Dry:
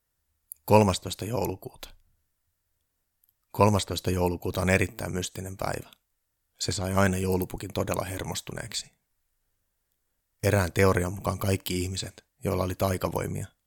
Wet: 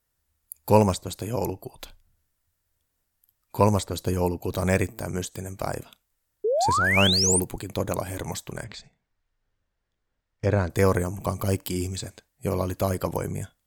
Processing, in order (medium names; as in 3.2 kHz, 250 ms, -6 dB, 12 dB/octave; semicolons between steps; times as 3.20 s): dynamic bell 2.9 kHz, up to -7 dB, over -43 dBFS, Q 0.76; 6.44–7.40 s: painted sound rise 400–9800 Hz -24 dBFS; 8.64–10.70 s: distance through air 160 m; trim +1.5 dB